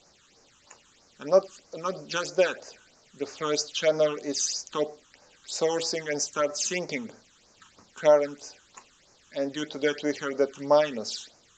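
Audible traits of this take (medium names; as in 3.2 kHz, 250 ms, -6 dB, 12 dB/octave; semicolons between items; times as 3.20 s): a quantiser's noise floor 10-bit, dither triangular; phasing stages 8, 3.1 Hz, lowest notch 600–3300 Hz; AAC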